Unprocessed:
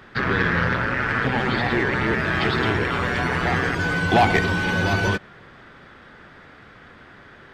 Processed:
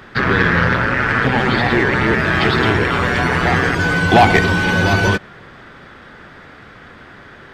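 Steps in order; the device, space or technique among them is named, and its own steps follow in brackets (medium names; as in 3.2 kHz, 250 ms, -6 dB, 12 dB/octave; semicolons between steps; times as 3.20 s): exciter from parts (in parallel at -14 dB: high-pass 4 kHz 12 dB/octave + saturation -37 dBFS, distortion -10 dB); on the sum: trim +6.5 dB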